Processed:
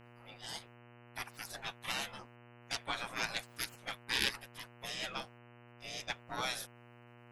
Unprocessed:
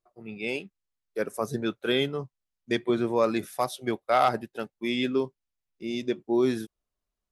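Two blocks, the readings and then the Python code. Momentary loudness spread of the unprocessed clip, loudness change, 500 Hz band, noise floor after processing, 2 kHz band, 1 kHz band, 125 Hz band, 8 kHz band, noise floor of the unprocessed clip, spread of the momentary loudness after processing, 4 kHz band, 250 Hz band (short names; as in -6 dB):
12 LU, -11.0 dB, -22.5 dB, -59 dBFS, -4.0 dB, -14.0 dB, -13.5 dB, +1.5 dB, under -85 dBFS, 22 LU, -2.5 dB, -23.5 dB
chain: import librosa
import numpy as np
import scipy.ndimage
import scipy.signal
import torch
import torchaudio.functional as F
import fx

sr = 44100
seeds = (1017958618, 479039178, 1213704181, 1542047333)

y = fx.cheby_harmonics(x, sr, harmonics=(3, 8), levels_db=(-21, -33), full_scale_db=-10.0)
y = fx.spec_gate(y, sr, threshold_db=-25, keep='weak')
y = fx.dmg_buzz(y, sr, base_hz=120.0, harmonics=25, level_db=-65.0, tilt_db=-4, odd_only=False)
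y = F.gain(torch.from_numpy(y), 7.0).numpy()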